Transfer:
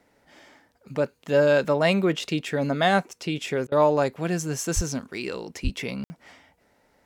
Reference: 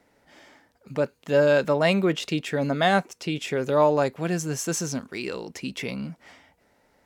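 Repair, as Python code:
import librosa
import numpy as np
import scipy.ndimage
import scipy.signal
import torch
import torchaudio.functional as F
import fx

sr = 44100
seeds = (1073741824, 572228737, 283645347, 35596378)

y = fx.highpass(x, sr, hz=140.0, slope=24, at=(4.75, 4.87), fade=0.02)
y = fx.highpass(y, sr, hz=140.0, slope=24, at=(5.63, 5.75), fade=0.02)
y = fx.fix_ambience(y, sr, seeds[0], print_start_s=0.36, print_end_s=0.86, start_s=6.04, end_s=6.1)
y = fx.fix_interpolate(y, sr, at_s=(3.67,), length_ms=47.0)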